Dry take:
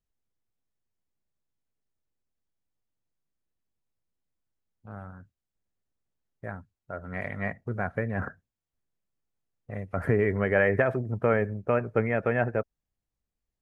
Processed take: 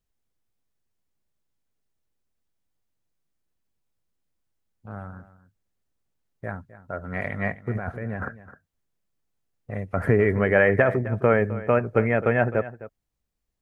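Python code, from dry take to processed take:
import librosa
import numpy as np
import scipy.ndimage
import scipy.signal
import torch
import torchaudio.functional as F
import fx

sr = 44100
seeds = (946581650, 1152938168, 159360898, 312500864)

y = fx.over_compress(x, sr, threshold_db=-36.0, ratio=-1.0, at=(7.74, 8.22), fade=0.02)
y = y + 10.0 ** (-16.0 / 20.0) * np.pad(y, (int(260 * sr / 1000.0), 0))[:len(y)]
y = F.gain(torch.from_numpy(y), 4.5).numpy()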